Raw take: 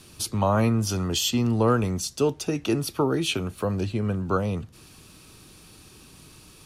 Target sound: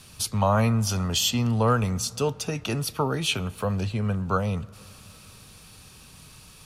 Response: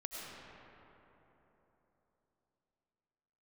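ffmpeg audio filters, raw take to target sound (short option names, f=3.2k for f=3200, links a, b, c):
-filter_complex "[0:a]equalizer=f=330:t=o:w=0.66:g=-12.5,asplit=2[a][b];[1:a]atrim=start_sample=2205,lowpass=4.1k[c];[b][c]afir=irnorm=-1:irlink=0,volume=-21.5dB[d];[a][d]amix=inputs=2:normalize=0,volume=1.5dB"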